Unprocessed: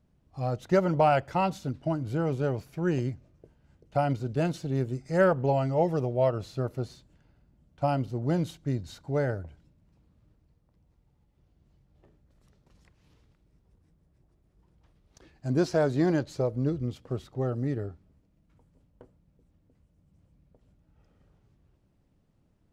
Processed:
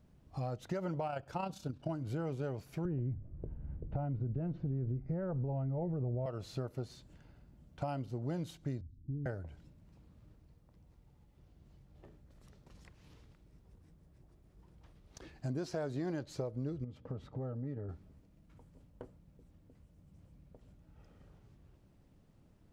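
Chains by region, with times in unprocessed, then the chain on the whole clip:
0:01.07–0:01.89: amplitude modulation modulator 30 Hz, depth 40% + notch filter 2,000 Hz, Q 5.3
0:02.85–0:06.26: low-pass filter 2,400 Hz + spectral tilt −4.5 dB per octave + mains-hum notches 50/100 Hz
0:08.81–0:09.26: inverse Chebyshev low-pass filter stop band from 600 Hz, stop band 50 dB + comb filter 2.8 ms, depth 68%
0:16.84–0:17.89: low-pass filter 1,200 Hz 6 dB per octave + downward compressor 2 to 1, threshold −39 dBFS + notch comb filter 360 Hz
whole clip: brickwall limiter −17.5 dBFS; downward compressor 4 to 1, threshold −41 dBFS; level +3.5 dB

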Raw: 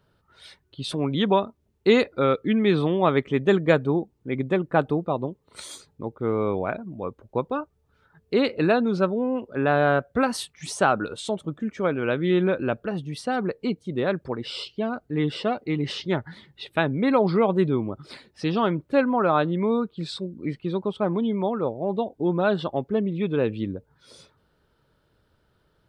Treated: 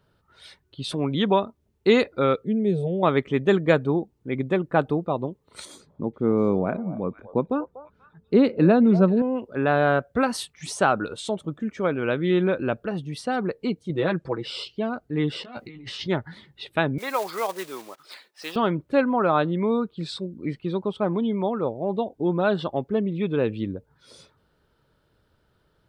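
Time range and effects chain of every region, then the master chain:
0:02.44–0:03.03: flat-topped bell 2,200 Hz −15.5 dB 2.8 octaves + phaser with its sweep stopped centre 300 Hz, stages 6
0:05.65–0:09.22: drawn EQ curve 120 Hz 0 dB, 180 Hz +9 dB, 440 Hz +2 dB, 3,100 Hz −7 dB + echo through a band-pass that steps 242 ms, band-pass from 710 Hz, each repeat 1.4 octaves, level −11.5 dB
0:13.89–0:14.46: low-pass filter 9,200 Hz + comb filter 6.1 ms, depth 68%
0:15.43–0:16.08: parametric band 450 Hz −8.5 dB 1.7 octaves + compressor whose output falls as the input rises −39 dBFS + double-tracking delay 17 ms −6 dB
0:16.98–0:18.56: one scale factor per block 5 bits + high-pass filter 750 Hz
whole clip: no processing

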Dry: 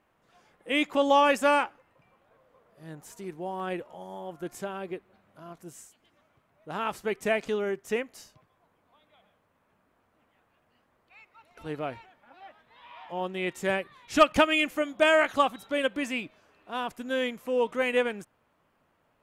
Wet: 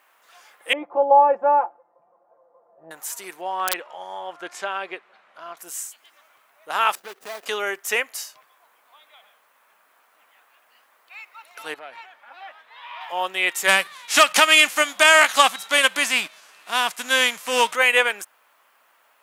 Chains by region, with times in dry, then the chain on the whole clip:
0:00.73–0:02.91: Chebyshev low-pass filter 750 Hz, order 3 + comb filter 5.8 ms, depth 72%
0:03.41–0:05.57: low-pass filter 4,300 Hz + wrap-around overflow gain 22.5 dB
0:06.95–0:07.46: running median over 41 samples + downward compressor 4 to 1, threshold −38 dBFS
0:11.74–0:13.01: high-shelf EQ 6,400 Hz −11 dB + downward compressor 3 to 1, threshold −43 dBFS + saturating transformer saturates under 650 Hz
0:13.67–0:17.74: spectral envelope flattened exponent 0.6 + low-pass filter 9,500 Hz + parametric band 170 Hz +12 dB 0.83 octaves
whole clip: high-pass filter 940 Hz 12 dB per octave; high-shelf EQ 9,900 Hz +11 dB; boost into a limiter +14.5 dB; level −1 dB

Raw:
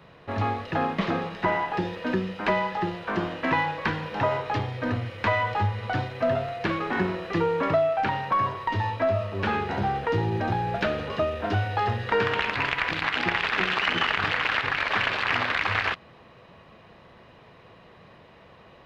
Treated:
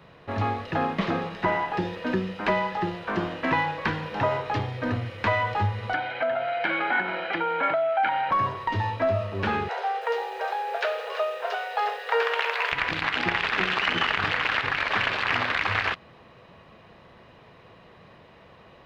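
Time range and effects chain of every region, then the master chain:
0:05.94–0:08.31: comb filter 1.3 ms, depth 64% + downward compressor 3 to 1, threshold −27 dBFS + loudspeaker in its box 320–4,100 Hz, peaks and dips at 330 Hz +8 dB, 530 Hz +3 dB, 800 Hz +5 dB, 1,400 Hz +9 dB, 2,100 Hz +10 dB, 3,100 Hz +5 dB
0:09.69–0:12.72: Butterworth high-pass 420 Hz 96 dB per octave + feedback echo at a low word length 325 ms, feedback 35%, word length 8 bits, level −12 dB
whole clip: no processing

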